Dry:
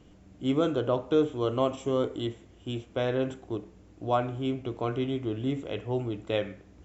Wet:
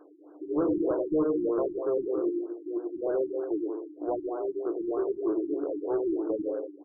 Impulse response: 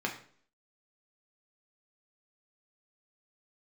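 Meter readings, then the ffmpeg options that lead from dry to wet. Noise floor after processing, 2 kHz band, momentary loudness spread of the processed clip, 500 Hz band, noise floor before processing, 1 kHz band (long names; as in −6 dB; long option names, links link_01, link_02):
−52 dBFS, below −10 dB, 7 LU, +1.0 dB, −55 dBFS, −6.0 dB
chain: -filter_complex "[0:a]afftfilt=real='re*between(b*sr/4096,280,3000)':imag='im*between(b*sr/4096,280,3000)':win_size=4096:overlap=0.75,acrossover=split=420[link_01][link_02];[link_02]acompressor=threshold=-41dB:ratio=4[link_03];[link_01][link_03]amix=inputs=2:normalize=0,aecho=1:1:100|180|244|295.2|336.2:0.631|0.398|0.251|0.158|0.1,asoftclip=type=tanh:threshold=-27.5dB,afftfilt=real='re*lt(b*sr/1024,360*pow(1700/360,0.5+0.5*sin(2*PI*3.2*pts/sr)))':imag='im*lt(b*sr/1024,360*pow(1700/360,0.5+0.5*sin(2*PI*3.2*pts/sr)))':win_size=1024:overlap=0.75,volume=7dB"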